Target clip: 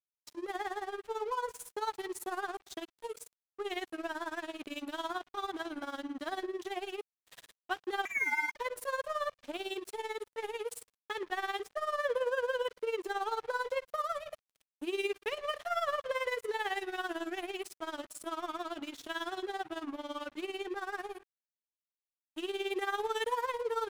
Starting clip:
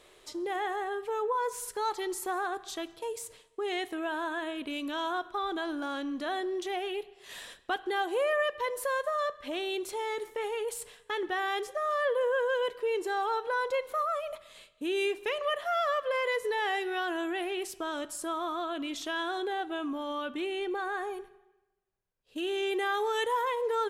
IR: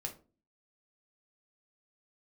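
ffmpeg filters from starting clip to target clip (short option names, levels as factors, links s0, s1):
-filter_complex "[0:a]tremolo=f=18:d=0.71,asettb=1/sr,asplit=3[s0][s1][s2];[s0]atrim=end=8.054[s3];[s1]atrim=start=8.05:end=8.56,asetpts=PTS-STARTPTS,afade=t=in:d=0.004:c=qsin,afade=t=out:st=0.506:d=0.004:c=qsin,lowpass=f=2300:t=q:w=0.5098,lowpass=f=2300:t=q:w=0.6013,lowpass=f=2300:t=q:w=0.9,lowpass=f=2300:t=q:w=2.563,afreqshift=-2700[s4];[s2]atrim=start=8.556[s5];[s3][s4]acrossfade=d=0.004:c1=hsin:c2=qsin[s6];[s6][s5]acrossfade=d=0.004:c1=qsin:c2=hsin,aeval=exprs='sgn(val(0))*max(abs(val(0))-0.00501,0)':c=same"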